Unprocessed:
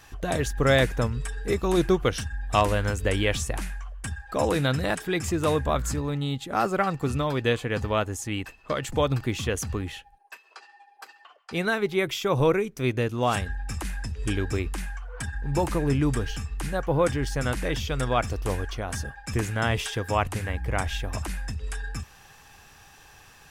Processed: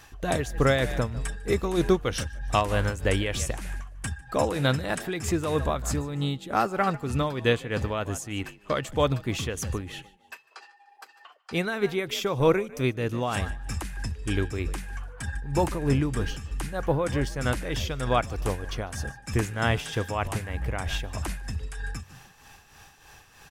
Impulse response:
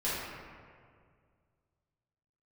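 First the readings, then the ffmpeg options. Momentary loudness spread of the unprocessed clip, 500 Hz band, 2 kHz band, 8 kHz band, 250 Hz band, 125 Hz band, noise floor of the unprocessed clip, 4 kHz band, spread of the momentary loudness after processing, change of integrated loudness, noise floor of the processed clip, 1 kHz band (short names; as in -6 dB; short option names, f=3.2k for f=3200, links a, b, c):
10 LU, -1.0 dB, -1.5 dB, -1.0 dB, -1.0 dB, -1.0 dB, -53 dBFS, -1.0 dB, 11 LU, -1.0 dB, -56 dBFS, -1.0 dB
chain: -filter_complex "[0:a]asplit=4[a][b][c][d];[b]adelay=149,afreqshift=47,volume=-18dB[e];[c]adelay=298,afreqshift=94,volume=-28.2dB[f];[d]adelay=447,afreqshift=141,volume=-38.3dB[g];[a][e][f][g]amix=inputs=4:normalize=0,tremolo=f=3.2:d=0.58,volume=1.5dB"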